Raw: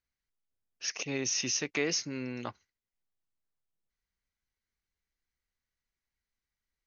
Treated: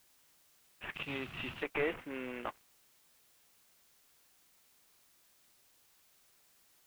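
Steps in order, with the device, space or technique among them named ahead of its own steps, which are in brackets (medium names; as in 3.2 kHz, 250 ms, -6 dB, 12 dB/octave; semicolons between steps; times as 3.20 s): army field radio (band-pass 380–3100 Hz; CVSD coder 16 kbps; white noise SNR 23 dB); 0.94–1.63 s: graphic EQ 125/500/2000/4000 Hz +11/-10/-5/+10 dB; trim +1.5 dB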